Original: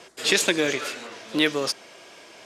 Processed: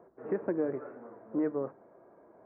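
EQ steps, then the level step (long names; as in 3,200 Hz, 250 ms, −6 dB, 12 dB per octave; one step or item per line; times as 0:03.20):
Gaussian smoothing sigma 8.5 samples
mains-hum notches 50/100/150 Hz
−5.0 dB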